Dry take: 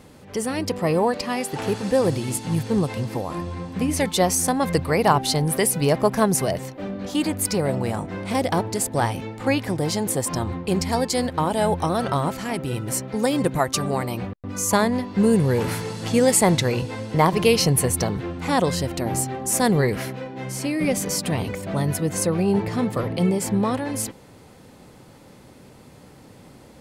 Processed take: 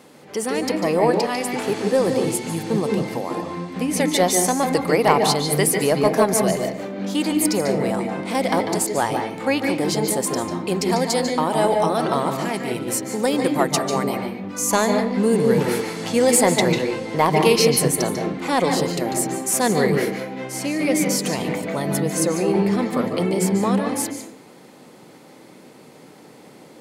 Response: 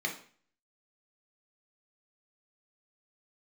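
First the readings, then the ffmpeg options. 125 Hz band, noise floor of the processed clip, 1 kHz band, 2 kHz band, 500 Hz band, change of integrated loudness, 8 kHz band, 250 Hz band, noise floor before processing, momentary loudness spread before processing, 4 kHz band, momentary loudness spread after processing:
−2.5 dB, −46 dBFS, +2.5 dB, +3.0 dB, +3.5 dB, +2.0 dB, +2.0 dB, +2.0 dB, −48 dBFS, 9 LU, +2.5 dB, 8 LU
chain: -filter_complex "[0:a]highpass=240,acontrast=48,asplit=2[link_01][link_02];[1:a]atrim=start_sample=2205,lowshelf=frequency=460:gain=7.5,adelay=145[link_03];[link_02][link_03]afir=irnorm=-1:irlink=0,volume=-10dB[link_04];[link_01][link_04]amix=inputs=2:normalize=0,volume=-4dB"

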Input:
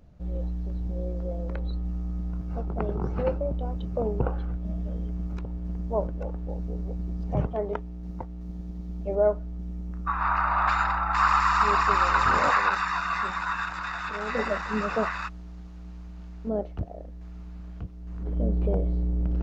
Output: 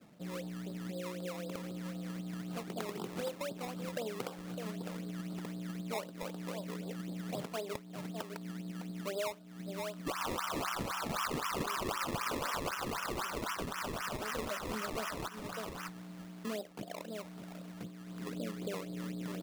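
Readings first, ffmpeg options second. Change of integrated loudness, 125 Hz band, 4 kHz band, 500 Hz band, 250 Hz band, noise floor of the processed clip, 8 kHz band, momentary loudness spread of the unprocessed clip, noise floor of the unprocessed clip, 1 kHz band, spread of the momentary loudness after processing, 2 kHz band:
−12.0 dB, −12.5 dB, −1.5 dB, −9.5 dB, −6.0 dB, −50 dBFS, can't be measured, 17 LU, −41 dBFS, −14.5 dB, 8 LU, −13.0 dB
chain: -filter_complex "[0:a]areverse,acompressor=mode=upward:threshold=-36dB:ratio=2.5,areverse,adynamicequalizer=threshold=0.0158:dfrequency=1500:dqfactor=0.7:tfrequency=1500:tqfactor=0.7:attack=5:release=100:ratio=0.375:range=2.5:mode=boostabove:tftype=bell,bandreject=frequency=820:width=14,aresample=8000,aresample=44100,highpass=frequency=180:width=0.5412,highpass=frequency=180:width=1.3066,asplit=2[link_01][link_02];[link_02]aecho=0:1:606:0.2[link_03];[link_01][link_03]amix=inputs=2:normalize=0,acrusher=samples=20:mix=1:aa=0.000001:lfo=1:lforange=20:lforate=3.9,acompressor=threshold=-40dB:ratio=4,volume=1.5dB"

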